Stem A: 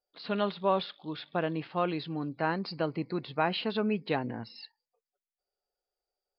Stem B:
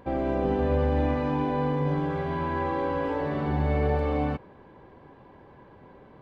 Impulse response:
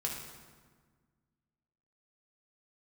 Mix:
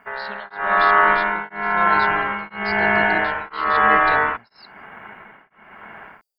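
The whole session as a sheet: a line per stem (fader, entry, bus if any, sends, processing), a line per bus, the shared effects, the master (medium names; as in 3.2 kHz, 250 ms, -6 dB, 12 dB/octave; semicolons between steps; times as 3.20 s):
-3.5 dB, 0.00 s, no send, treble shelf 3.7 kHz +12 dB
0.0 dB, 0.00 s, no send, low-pass 1.6 kHz 24 dB/octave; level rider gain up to 14 dB; ring modulator 1.2 kHz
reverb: none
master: treble shelf 4.7 kHz +11 dB; tremolo of two beating tones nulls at 1 Hz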